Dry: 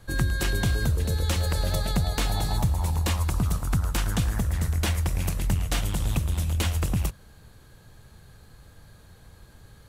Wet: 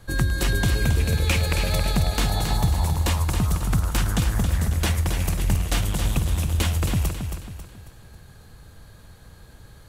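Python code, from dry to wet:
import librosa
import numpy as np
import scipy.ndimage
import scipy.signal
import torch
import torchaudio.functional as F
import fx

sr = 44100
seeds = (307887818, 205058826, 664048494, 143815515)

p1 = fx.peak_eq(x, sr, hz=2400.0, db=14.0, octaves=0.33, at=(0.76, 1.83))
p2 = p1 + fx.echo_feedback(p1, sr, ms=272, feedback_pct=41, wet_db=-7, dry=0)
y = F.gain(torch.from_numpy(p2), 2.5).numpy()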